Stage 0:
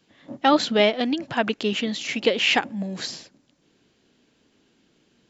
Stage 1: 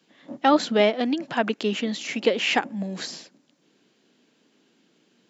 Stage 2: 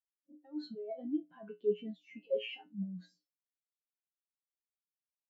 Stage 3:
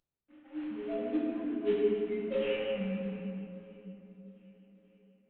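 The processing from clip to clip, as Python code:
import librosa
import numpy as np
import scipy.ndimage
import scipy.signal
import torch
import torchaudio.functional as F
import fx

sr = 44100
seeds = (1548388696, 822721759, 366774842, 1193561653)

y1 = scipy.signal.sosfilt(scipy.signal.butter(4, 160.0, 'highpass', fs=sr, output='sos'), x)
y1 = fx.dynamic_eq(y1, sr, hz=3500.0, q=0.92, threshold_db=-34.0, ratio=4.0, max_db=-5)
y2 = fx.over_compress(y1, sr, threshold_db=-25.0, ratio=-1.0)
y2 = fx.comb_fb(y2, sr, f0_hz=60.0, decay_s=0.4, harmonics='odd', damping=0.0, mix_pct=90)
y2 = fx.spectral_expand(y2, sr, expansion=2.5)
y3 = fx.cvsd(y2, sr, bps=16000)
y3 = fx.echo_swing(y3, sr, ms=1213, ratio=1.5, feedback_pct=31, wet_db=-24.0)
y3 = fx.room_shoebox(y3, sr, seeds[0], volume_m3=120.0, walls='hard', distance_m=0.83)
y3 = F.gain(torch.from_numpy(y3), -2.0).numpy()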